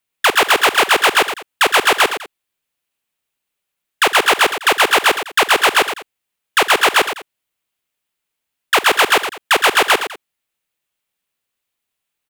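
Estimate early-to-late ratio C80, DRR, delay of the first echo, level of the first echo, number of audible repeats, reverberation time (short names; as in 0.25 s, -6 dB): none, none, 51 ms, -19.0 dB, 3, none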